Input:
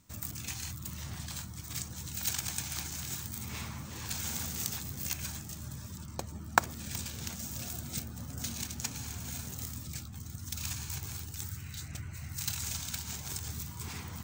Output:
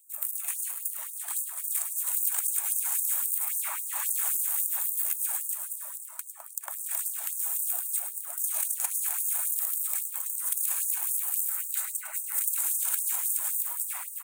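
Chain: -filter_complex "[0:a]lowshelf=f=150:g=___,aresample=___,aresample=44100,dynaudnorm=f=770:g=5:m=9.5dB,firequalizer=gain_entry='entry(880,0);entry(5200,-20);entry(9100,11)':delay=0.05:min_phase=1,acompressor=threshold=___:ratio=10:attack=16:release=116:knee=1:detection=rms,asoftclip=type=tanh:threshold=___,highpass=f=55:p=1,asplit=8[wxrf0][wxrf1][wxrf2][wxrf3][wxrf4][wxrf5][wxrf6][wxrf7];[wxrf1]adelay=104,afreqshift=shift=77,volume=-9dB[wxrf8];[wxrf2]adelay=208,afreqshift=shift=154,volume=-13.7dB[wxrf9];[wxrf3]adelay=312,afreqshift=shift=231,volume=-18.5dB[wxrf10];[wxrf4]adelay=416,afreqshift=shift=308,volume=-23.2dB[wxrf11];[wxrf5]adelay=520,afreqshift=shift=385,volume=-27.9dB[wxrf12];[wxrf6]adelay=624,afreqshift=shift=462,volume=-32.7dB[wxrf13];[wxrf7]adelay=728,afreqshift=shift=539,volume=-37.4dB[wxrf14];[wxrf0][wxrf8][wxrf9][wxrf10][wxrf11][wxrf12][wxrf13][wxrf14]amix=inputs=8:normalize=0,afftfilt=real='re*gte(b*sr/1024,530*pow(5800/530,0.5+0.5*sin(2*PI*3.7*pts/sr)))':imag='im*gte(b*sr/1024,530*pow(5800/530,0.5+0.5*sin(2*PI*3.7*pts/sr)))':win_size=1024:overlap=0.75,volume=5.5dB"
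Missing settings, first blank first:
-4.5, 32000, -30dB, -18dB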